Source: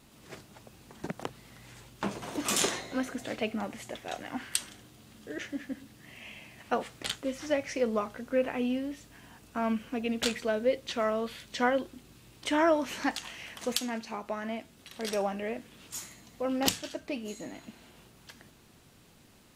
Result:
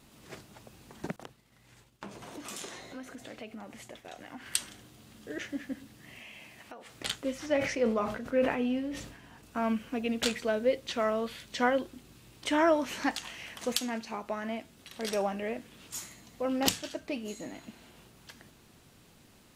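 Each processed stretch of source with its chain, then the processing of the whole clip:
0:01.16–0:04.46: downward expander −45 dBFS + downward compressor 2.5 to 1, threshold −45 dBFS
0:06.20–0:06.96: low-shelf EQ 190 Hz −7 dB + downward compressor, threshold −44 dBFS
0:07.46–0:09.43: high-shelf EQ 6,400 Hz −8.5 dB + hum removal 106.3 Hz, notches 29 + level that may fall only so fast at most 65 dB per second
whole clip: no processing

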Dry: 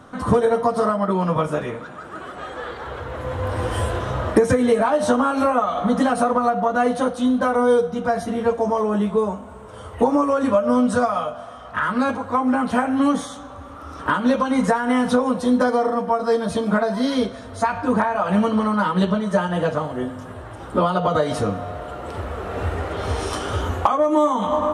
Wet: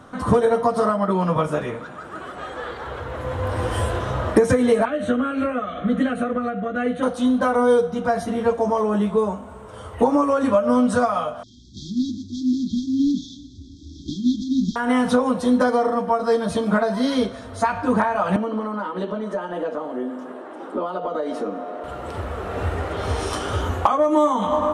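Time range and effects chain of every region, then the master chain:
0:04.85–0:07.03: low-pass filter 5,800 Hz + phaser with its sweep stopped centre 2,200 Hz, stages 4
0:11.43–0:14.76: variable-slope delta modulation 32 kbit/s + linear-phase brick-wall band-stop 380–3,200 Hz
0:18.36–0:21.84: Butterworth high-pass 250 Hz + downward compressor 2 to 1, threshold −30 dBFS + spectral tilt −3 dB per octave
whole clip: no processing

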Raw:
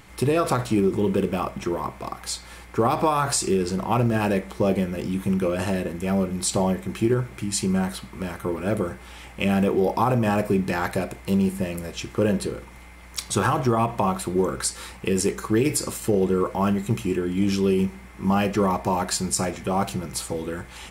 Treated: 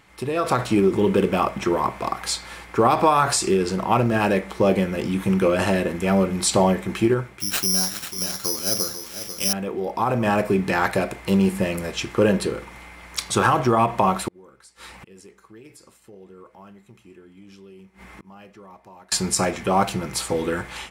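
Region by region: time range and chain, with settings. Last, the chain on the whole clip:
0:07.40–0:09.53: single-tap delay 493 ms −10 dB + bad sample-rate conversion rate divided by 8×, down none, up zero stuff
0:14.28–0:19.12: gate with flip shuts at −25 dBFS, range −28 dB + downward compressor 3 to 1, threshold −46 dBFS
whole clip: low-pass filter 2,300 Hz 6 dB per octave; spectral tilt +2 dB per octave; automatic gain control gain up to 12.5 dB; level −3.5 dB

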